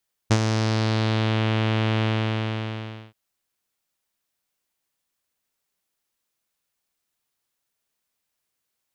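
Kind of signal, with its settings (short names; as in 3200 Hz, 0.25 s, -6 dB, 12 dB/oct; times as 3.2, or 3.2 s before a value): synth note saw A2 12 dB/oct, low-pass 3200 Hz, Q 2.2, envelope 1 oct, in 1.13 s, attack 15 ms, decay 0.06 s, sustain -7 dB, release 1.10 s, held 1.73 s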